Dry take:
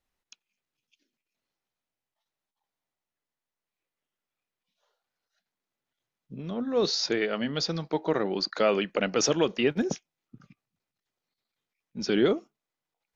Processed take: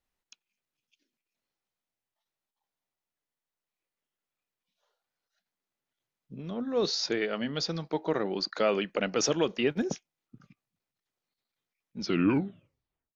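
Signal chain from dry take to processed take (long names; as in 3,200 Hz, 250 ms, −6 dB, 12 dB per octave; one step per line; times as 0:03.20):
turntable brake at the end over 1.16 s
level −2.5 dB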